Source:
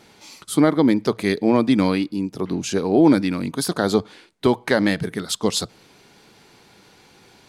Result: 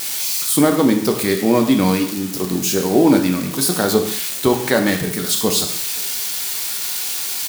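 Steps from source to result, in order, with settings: switching spikes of -17 dBFS; outdoor echo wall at 90 m, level -28 dB; non-linear reverb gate 0.23 s falling, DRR 3.5 dB; gain +1 dB

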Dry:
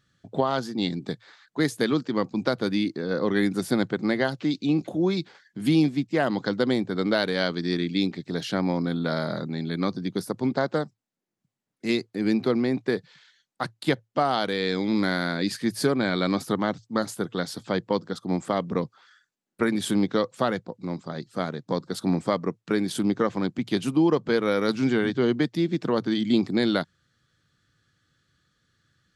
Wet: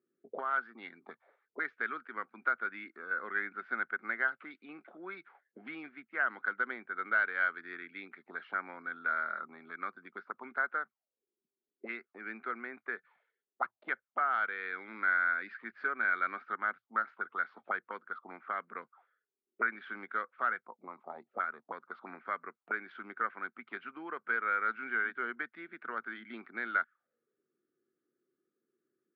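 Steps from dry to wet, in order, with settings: auto-wah 370–1500 Hz, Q 6.3, up, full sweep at -24.5 dBFS; speaker cabinet 200–3200 Hz, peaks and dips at 230 Hz +8 dB, 390 Hz +6 dB, 680 Hz +3 dB, 1300 Hz +7 dB, 2200 Hz +9 dB

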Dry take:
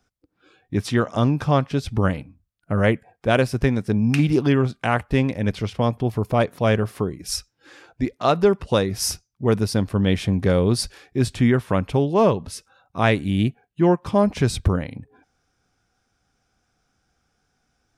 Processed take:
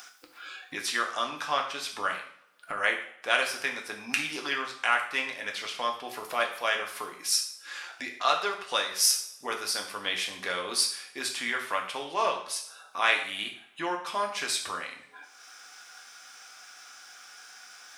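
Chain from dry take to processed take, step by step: HPF 1300 Hz 12 dB/oct; upward compressor, threshold -32 dBFS; two-slope reverb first 0.55 s, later 2.1 s, from -27 dB, DRR 1.5 dB

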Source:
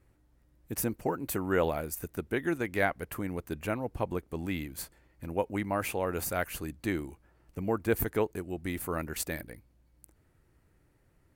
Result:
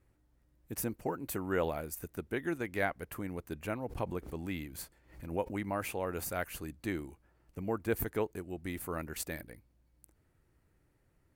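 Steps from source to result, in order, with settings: 3.82–5.83 backwards sustainer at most 120 dB/s; gain -4.5 dB

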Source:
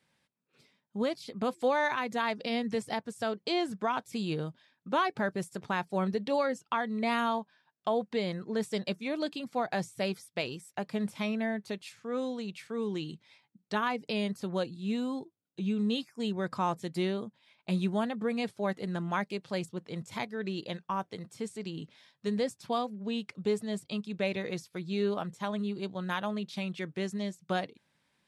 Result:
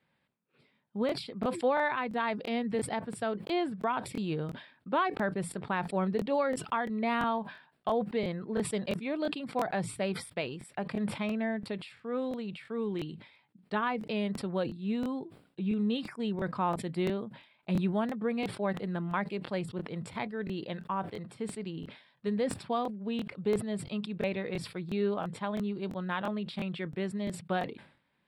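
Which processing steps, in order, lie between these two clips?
running mean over 7 samples; crackling interface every 0.34 s, samples 1024, repeat, from 0.39; sustainer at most 110 dB/s

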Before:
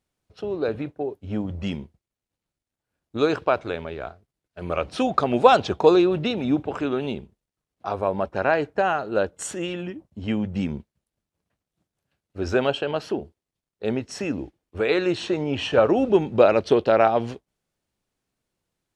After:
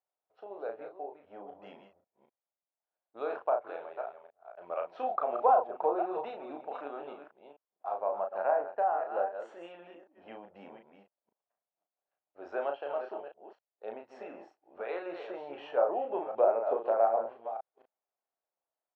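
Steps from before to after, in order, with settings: reverse delay 0.251 s, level -8 dB; ladder band-pass 830 Hz, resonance 45%; treble ducked by the level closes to 1200 Hz, closed at -25.5 dBFS; doubler 35 ms -5 dB

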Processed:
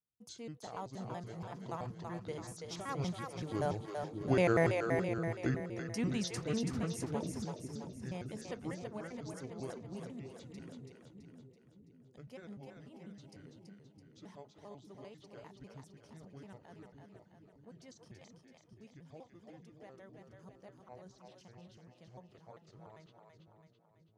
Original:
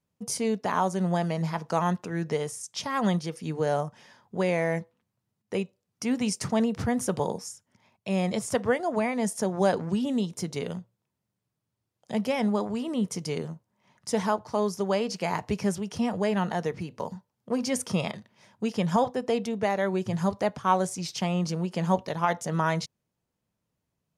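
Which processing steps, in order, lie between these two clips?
trilling pitch shifter -6.5 st, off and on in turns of 97 ms; Doppler pass-by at 4.85, 7 m/s, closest 3.6 m; split-band echo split 380 Hz, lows 0.611 s, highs 0.331 s, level -4.5 dB

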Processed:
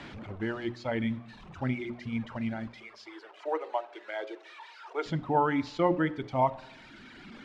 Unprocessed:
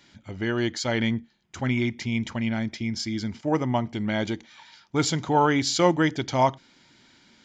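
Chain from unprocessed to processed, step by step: delta modulation 64 kbps, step -30.5 dBFS; 2.67–5.06 steep high-pass 370 Hz 48 dB/oct; reverb removal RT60 1.9 s; LPF 3400 Hz 12 dB/oct; high shelf 2600 Hz -11.5 dB; notches 60/120/180/240/300/360/420/480/540 Hz; reverb RT60 0.90 s, pre-delay 4 ms, DRR 17 dB; gain -3 dB

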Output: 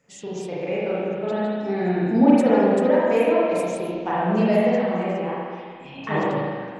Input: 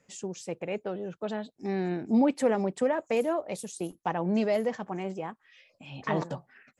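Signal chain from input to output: spring tank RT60 2 s, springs 33/40 ms, chirp 50 ms, DRR -8 dB

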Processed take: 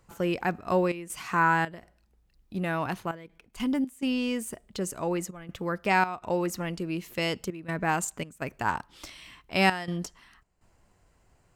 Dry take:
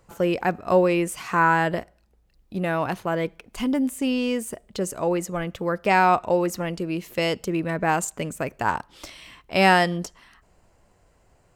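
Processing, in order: bell 550 Hz -5 dB 0.97 oct; 3.16–3.6 level quantiser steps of 10 dB; step gate "xxxxx.xxx.xx" 82 bpm -12 dB; gain -3 dB

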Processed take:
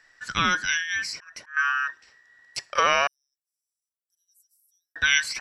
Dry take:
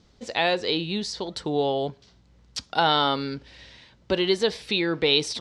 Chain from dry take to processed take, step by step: band inversion scrambler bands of 2000 Hz; 1.12–1.57 auto swell 0.341 s; 3.07–4.96 inverse Chebyshev high-pass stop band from 2600 Hz, stop band 80 dB

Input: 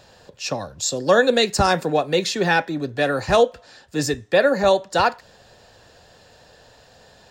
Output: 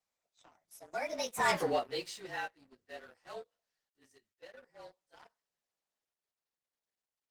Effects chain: inharmonic rescaling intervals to 109%; Doppler pass-by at 1.6, 44 m/s, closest 3.4 m; weighting filter A; sample leveller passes 2; gain -5.5 dB; Opus 20 kbps 48000 Hz

